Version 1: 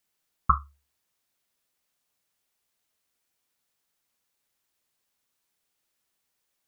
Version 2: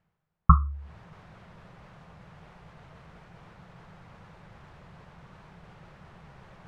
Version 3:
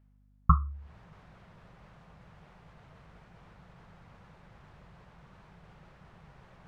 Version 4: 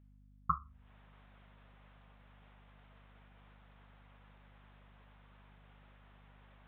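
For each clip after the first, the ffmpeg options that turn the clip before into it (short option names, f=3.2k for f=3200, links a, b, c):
-af "lowpass=1.2k,lowshelf=f=210:t=q:w=3:g=7,areverse,acompressor=mode=upward:threshold=-28dB:ratio=2.5,areverse,volume=4dB"
-af "aeval=exprs='val(0)+0.00141*(sin(2*PI*50*n/s)+sin(2*PI*2*50*n/s)/2+sin(2*PI*3*50*n/s)/3+sin(2*PI*4*50*n/s)/4+sin(2*PI*5*50*n/s)/5)':c=same,volume=-5dB"
-af "aemphasis=mode=production:type=riaa,aeval=exprs='val(0)+0.002*(sin(2*PI*50*n/s)+sin(2*PI*2*50*n/s)/2+sin(2*PI*3*50*n/s)/3+sin(2*PI*4*50*n/s)/4+sin(2*PI*5*50*n/s)/5)':c=same,aresample=8000,aresample=44100,volume=-7dB"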